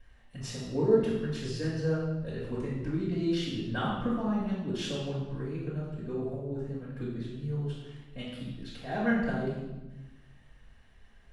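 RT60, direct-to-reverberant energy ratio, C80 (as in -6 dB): 1.1 s, -7.5 dB, 4.0 dB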